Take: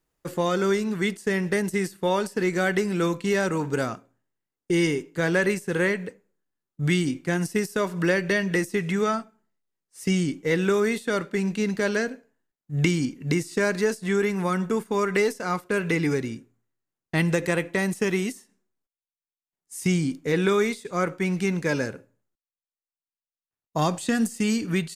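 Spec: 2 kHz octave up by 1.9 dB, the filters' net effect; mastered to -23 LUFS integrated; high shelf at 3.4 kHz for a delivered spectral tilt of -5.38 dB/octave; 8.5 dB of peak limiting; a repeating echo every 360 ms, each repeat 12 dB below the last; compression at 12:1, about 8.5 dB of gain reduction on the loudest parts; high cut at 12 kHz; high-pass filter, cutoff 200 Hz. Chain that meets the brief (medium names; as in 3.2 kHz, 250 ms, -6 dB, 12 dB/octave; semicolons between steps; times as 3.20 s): high-pass 200 Hz; low-pass 12 kHz; peaking EQ 2 kHz +3.5 dB; treble shelf 3.4 kHz -4.5 dB; compression 12:1, threshold -27 dBFS; peak limiter -22.5 dBFS; feedback delay 360 ms, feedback 25%, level -12 dB; trim +11 dB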